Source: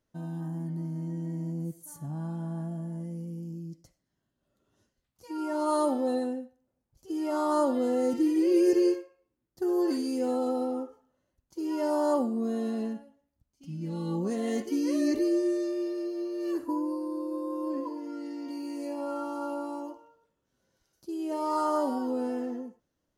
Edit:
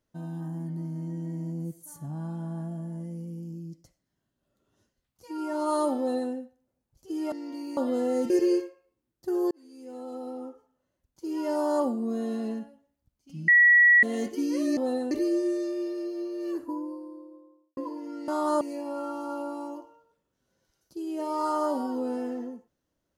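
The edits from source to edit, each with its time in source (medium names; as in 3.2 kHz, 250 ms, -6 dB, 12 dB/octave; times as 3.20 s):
5.98–6.32 s: copy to 15.11 s
7.32–7.65 s: swap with 18.28–18.73 s
8.18–8.64 s: delete
9.85–11.66 s: fade in
13.82–14.37 s: bleep 1.93 kHz -14 dBFS
16.16–17.77 s: studio fade out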